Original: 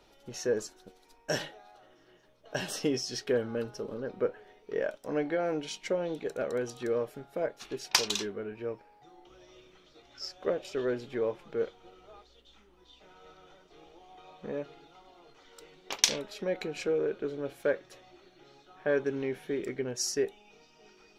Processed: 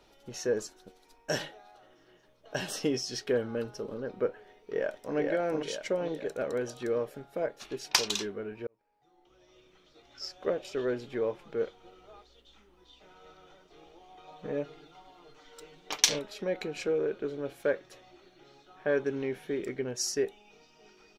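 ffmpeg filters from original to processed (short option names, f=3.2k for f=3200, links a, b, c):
-filter_complex "[0:a]asplit=2[a][b];[b]afade=t=in:st=4.29:d=0.01,afade=t=out:st=5.16:d=0.01,aecho=0:1:460|920|1380|1840|2300|2760|3220:0.794328|0.397164|0.198582|0.099291|0.0496455|0.0248228|0.0124114[c];[a][c]amix=inputs=2:normalize=0,asettb=1/sr,asplit=3[d][e][f];[d]atrim=end=14.274[g];[e]atrim=start=14.27:end=16.19,asetpts=PTS-STARTPTS,afade=t=in:d=0.004:c=qsin,afade=t=out:st=1.916:d=0.004:c=qsin,aecho=1:1:6.6:0.65,atrim=end_sample=84672[h];[f]atrim=start=16.186[i];[g][h]acrossfade=d=0.004:c1=hsin:c2=qsin[j];[j][i]acrossfade=d=0.004:c1=qsin:c2=hsin,asplit=2[k][l];[k]atrim=end=8.67,asetpts=PTS-STARTPTS,afade=t=out:st=8.666:d=0.004:c=hsin[m];[l]atrim=start=8.67,asetpts=PTS-STARTPTS,afade=t=in:d=1.57[n];[m][n]concat=n=2:v=0:a=1"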